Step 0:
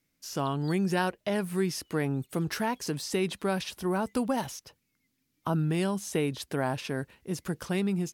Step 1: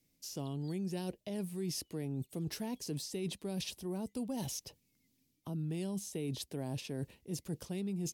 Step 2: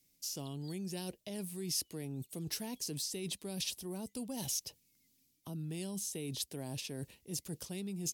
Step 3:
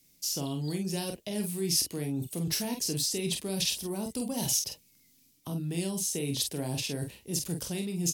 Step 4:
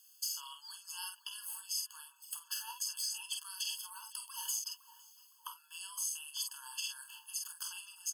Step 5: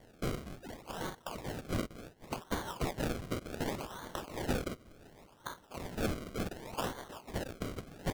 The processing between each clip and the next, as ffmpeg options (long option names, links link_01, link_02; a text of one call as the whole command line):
ffmpeg -i in.wav -filter_complex "[0:a]acrossover=split=430|3000[link_01][link_02][link_03];[link_02]acompressor=threshold=-34dB:ratio=6[link_04];[link_01][link_04][link_03]amix=inputs=3:normalize=0,equalizer=frequency=1400:width_type=o:width=1.2:gain=-14.5,areverse,acompressor=threshold=-39dB:ratio=5,areverse,volume=2.5dB" out.wav
ffmpeg -i in.wav -af "highshelf=frequency=2700:gain=10.5,volume=-3.5dB" out.wav
ffmpeg -i in.wav -af "aecho=1:1:29|47:0.335|0.501,volume=7.5dB" out.wav
ffmpeg -i in.wav -filter_complex "[0:a]acompressor=threshold=-37dB:ratio=6,asplit=2[link_01][link_02];[link_02]adelay=510,lowpass=frequency=980:poles=1,volume=-9.5dB,asplit=2[link_03][link_04];[link_04]adelay=510,lowpass=frequency=980:poles=1,volume=0.52,asplit=2[link_05][link_06];[link_06]adelay=510,lowpass=frequency=980:poles=1,volume=0.52,asplit=2[link_07][link_08];[link_08]adelay=510,lowpass=frequency=980:poles=1,volume=0.52,asplit=2[link_09][link_10];[link_10]adelay=510,lowpass=frequency=980:poles=1,volume=0.52,asplit=2[link_11][link_12];[link_12]adelay=510,lowpass=frequency=980:poles=1,volume=0.52[link_13];[link_01][link_03][link_05][link_07][link_09][link_11][link_13]amix=inputs=7:normalize=0,afftfilt=real='re*eq(mod(floor(b*sr/1024/870),2),1)':imag='im*eq(mod(floor(b*sr/1024/870),2),1)':win_size=1024:overlap=0.75,volume=5.5dB" out.wav
ffmpeg -i in.wav -af "acrusher=samples=34:mix=1:aa=0.000001:lfo=1:lforange=34:lforate=0.68,volume=4dB" out.wav